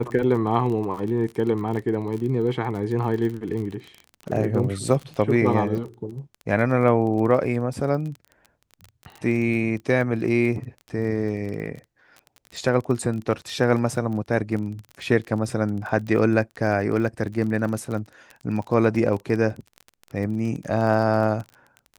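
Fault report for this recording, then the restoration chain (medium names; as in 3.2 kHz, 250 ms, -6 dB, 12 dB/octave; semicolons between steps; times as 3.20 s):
crackle 29 per s -30 dBFS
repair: de-click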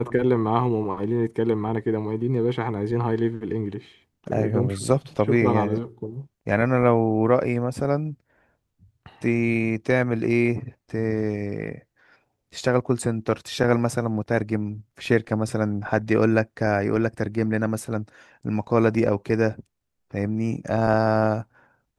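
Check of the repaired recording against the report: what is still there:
nothing left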